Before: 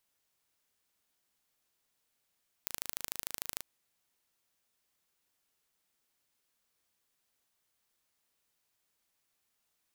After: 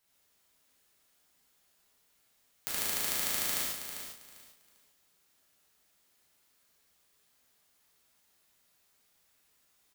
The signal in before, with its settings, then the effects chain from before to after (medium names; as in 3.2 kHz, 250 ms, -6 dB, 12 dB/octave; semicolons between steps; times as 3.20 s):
pulse train 26.7 per s, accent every 2, -7.5 dBFS 0.97 s
on a send: feedback delay 397 ms, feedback 23%, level -9 dB; on the sum: gated-style reverb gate 170 ms flat, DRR -8 dB